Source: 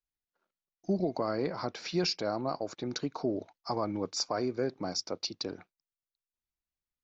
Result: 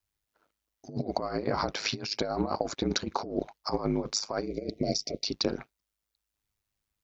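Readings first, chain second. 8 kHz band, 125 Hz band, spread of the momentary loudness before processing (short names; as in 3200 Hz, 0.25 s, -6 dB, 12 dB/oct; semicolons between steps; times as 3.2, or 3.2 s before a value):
n/a, +2.5 dB, 7 LU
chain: negative-ratio compressor -35 dBFS, ratio -0.5; ring modulator 52 Hz; spectral gain 4.46–5.24, 730–1900 Hz -27 dB; gain +8.5 dB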